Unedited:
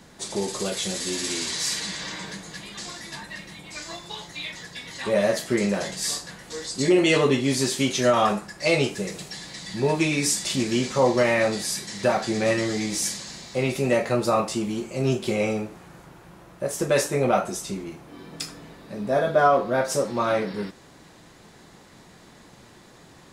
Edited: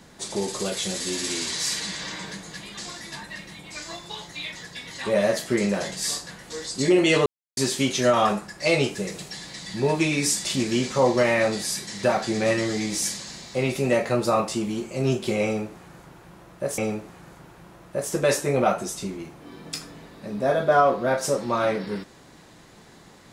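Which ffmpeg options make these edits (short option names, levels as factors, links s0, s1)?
-filter_complex "[0:a]asplit=4[s0][s1][s2][s3];[s0]atrim=end=7.26,asetpts=PTS-STARTPTS,afade=t=out:st=7.256:d=0.004:c=hsin[s4];[s1]atrim=start=7.26:end=7.57,asetpts=PTS-STARTPTS,volume=0[s5];[s2]atrim=start=7.57:end=16.782,asetpts=PTS-STARTPTS,afade=t=in:d=0.004:c=hsin[s6];[s3]atrim=start=15.448[s7];[s4][s5][s6]concat=n=3:v=0:a=1[s8];[s8][s7]acrossfade=d=0.004:c1=hsin:c2=hsin"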